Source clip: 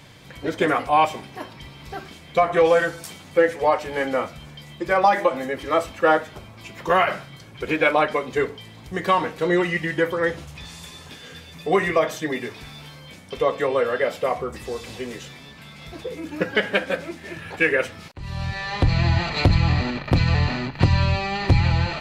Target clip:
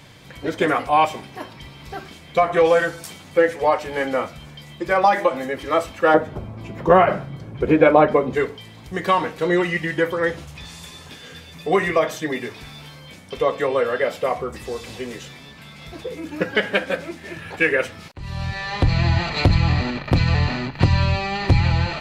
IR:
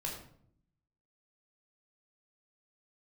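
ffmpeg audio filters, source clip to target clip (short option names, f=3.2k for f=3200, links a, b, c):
-filter_complex "[0:a]asettb=1/sr,asplit=3[a][b][c];[a]atrim=end=6.144[d];[b]atrim=start=6.14:end=8.35,asetpts=PTS-STARTPTS,afade=t=in:d=0.004:c=qsin,afade=t=out:st=2.206:d=0.004:c=qsin,tiltshelf=f=1.3k:g=9.5[e];[c]atrim=start=8.346[f];[d][e]acrossfade=d=0.004:c1=hsin:c2=qsin[g];[g][f]acrossfade=d=0.004:c1=qsin:c2=hsin,volume=1dB"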